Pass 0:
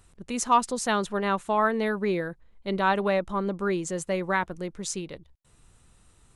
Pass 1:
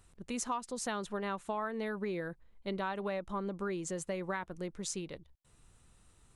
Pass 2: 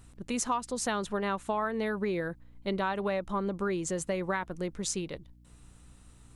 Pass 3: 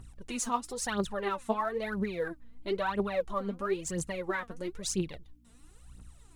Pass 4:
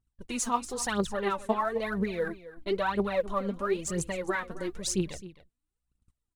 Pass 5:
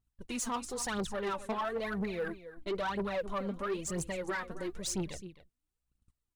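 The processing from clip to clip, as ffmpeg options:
ffmpeg -i in.wav -af "acompressor=threshold=-28dB:ratio=6,volume=-5dB" out.wav
ffmpeg -i in.wav -af "aeval=exprs='val(0)+0.000891*(sin(2*PI*60*n/s)+sin(2*PI*2*60*n/s)/2+sin(2*PI*3*60*n/s)/3+sin(2*PI*4*60*n/s)/4+sin(2*PI*5*60*n/s)/5)':channel_layout=same,volume=5.5dB" out.wav
ffmpeg -i in.wav -af "aphaser=in_gain=1:out_gain=1:delay=4.6:decay=0.74:speed=1:type=triangular,volume=-4.5dB" out.wav
ffmpeg -i in.wav -af "agate=range=-34dB:threshold=-43dB:ratio=16:detection=peak,aecho=1:1:263:0.158,volume=2.5dB" out.wav
ffmpeg -i in.wav -af "asoftclip=type=tanh:threshold=-27dB,volume=-2dB" out.wav

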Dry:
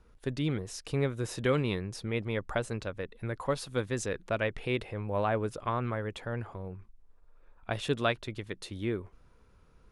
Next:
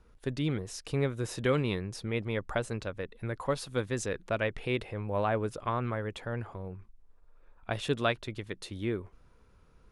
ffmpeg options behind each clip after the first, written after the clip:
ffmpeg -i in.wav -af anull out.wav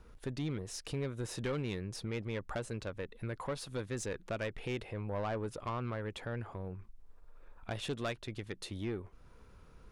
ffmpeg -i in.wav -af "acompressor=threshold=-51dB:ratio=1.5,aeval=exprs='(tanh(50.1*val(0)+0.25)-tanh(0.25))/50.1':channel_layout=same,volume=4.5dB" out.wav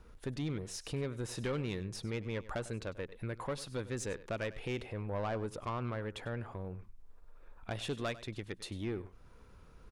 ffmpeg -i in.wav -af "aecho=1:1:98:0.141" out.wav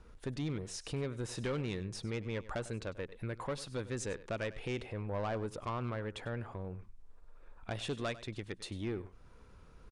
ffmpeg -i in.wav -af "asoftclip=type=hard:threshold=-29dB,aresample=22050,aresample=44100" out.wav

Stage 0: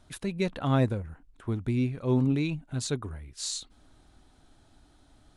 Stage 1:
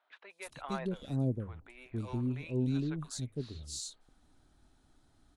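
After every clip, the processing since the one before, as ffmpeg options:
ffmpeg -i in.wav -filter_complex "[0:a]aeval=exprs='0.224*(cos(1*acos(clip(val(0)/0.224,-1,1)))-cos(1*PI/2))+0.00282*(cos(8*acos(clip(val(0)/0.224,-1,1)))-cos(8*PI/2))':channel_layout=same,bandreject=frequency=50:width_type=h:width=6,bandreject=frequency=100:width_type=h:width=6,acrossover=split=600|3100[link_01][link_02][link_03];[link_03]adelay=300[link_04];[link_01]adelay=460[link_05];[link_05][link_02][link_04]amix=inputs=3:normalize=0,volume=-6.5dB" out.wav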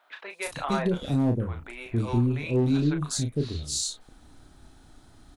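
ffmpeg -i in.wav -filter_complex "[0:a]asplit=2[link_01][link_02];[link_02]acompressor=threshold=-42dB:ratio=6,volume=-3dB[link_03];[link_01][link_03]amix=inputs=2:normalize=0,volume=24dB,asoftclip=hard,volume=-24dB,asplit=2[link_04][link_05];[link_05]adelay=34,volume=-6.5dB[link_06];[link_04][link_06]amix=inputs=2:normalize=0,volume=8dB" out.wav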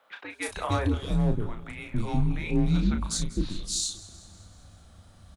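ffmpeg -i in.wav -af "afreqshift=-100,aecho=1:1:192|384|576|768|960:0.126|0.0705|0.0395|0.0221|0.0124" out.wav

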